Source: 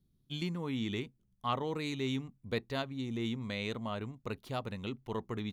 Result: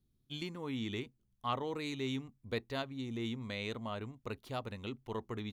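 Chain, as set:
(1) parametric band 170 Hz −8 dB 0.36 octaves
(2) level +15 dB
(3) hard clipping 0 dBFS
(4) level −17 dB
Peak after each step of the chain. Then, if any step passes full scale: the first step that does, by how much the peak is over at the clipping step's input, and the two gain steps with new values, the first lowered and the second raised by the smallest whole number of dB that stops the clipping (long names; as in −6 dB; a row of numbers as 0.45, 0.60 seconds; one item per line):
−20.0, −5.0, −5.0, −22.0 dBFS
no step passes full scale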